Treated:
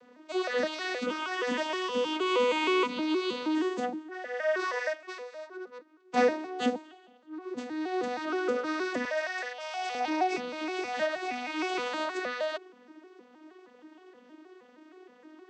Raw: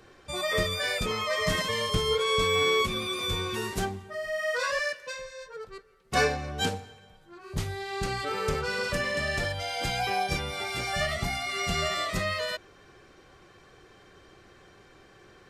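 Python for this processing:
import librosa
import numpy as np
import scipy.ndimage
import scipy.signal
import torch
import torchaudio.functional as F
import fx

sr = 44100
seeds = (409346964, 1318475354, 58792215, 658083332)

y = fx.vocoder_arp(x, sr, chord='major triad', root=59, every_ms=157)
y = fx.highpass(y, sr, hz=540.0, slope=24, at=(9.05, 9.95))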